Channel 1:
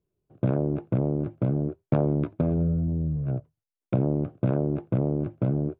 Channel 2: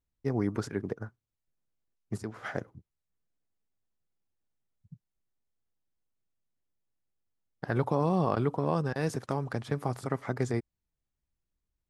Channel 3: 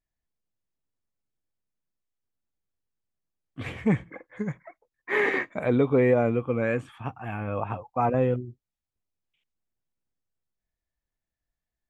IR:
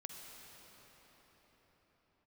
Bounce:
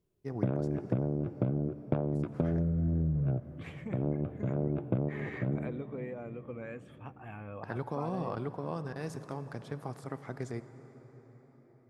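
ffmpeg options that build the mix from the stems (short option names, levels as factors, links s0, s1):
-filter_complex "[0:a]volume=1.06,asplit=2[s0][s1];[s1]volume=0.266[s2];[1:a]volume=0.282,asplit=2[s3][s4];[s4]volume=0.708[s5];[2:a]agate=range=0.447:threshold=0.00562:ratio=16:detection=peak,acompressor=threshold=0.0447:ratio=6,volume=0.251,asplit=3[s6][s7][s8];[s7]volume=0.188[s9];[s8]apad=whole_len=255646[s10];[s0][s10]sidechaincompress=threshold=0.00158:ratio=8:attack=16:release=178[s11];[3:a]atrim=start_sample=2205[s12];[s2][s5][s9]amix=inputs=3:normalize=0[s13];[s13][s12]afir=irnorm=-1:irlink=0[s14];[s11][s3][s6][s14]amix=inputs=4:normalize=0,acompressor=threshold=0.0501:ratio=12"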